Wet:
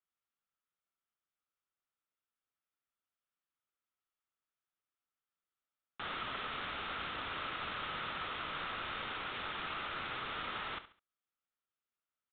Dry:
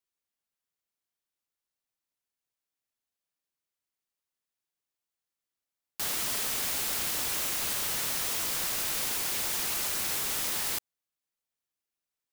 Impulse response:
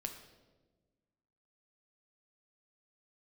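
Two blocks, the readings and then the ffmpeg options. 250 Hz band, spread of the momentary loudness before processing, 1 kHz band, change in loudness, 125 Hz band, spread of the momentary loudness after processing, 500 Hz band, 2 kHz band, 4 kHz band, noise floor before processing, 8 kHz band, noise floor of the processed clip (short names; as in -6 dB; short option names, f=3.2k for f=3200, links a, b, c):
-5.0 dB, 2 LU, +1.0 dB, -11.5 dB, -4.5 dB, 2 LU, -4.5 dB, -2.5 dB, -8.5 dB, under -85 dBFS, under -40 dB, under -85 dBFS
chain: -af "equalizer=f=1.3k:w=3.8:g=11,aecho=1:1:69|138|207:0.224|0.0694|0.0215,aresample=8000,aresample=44100,volume=-5dB"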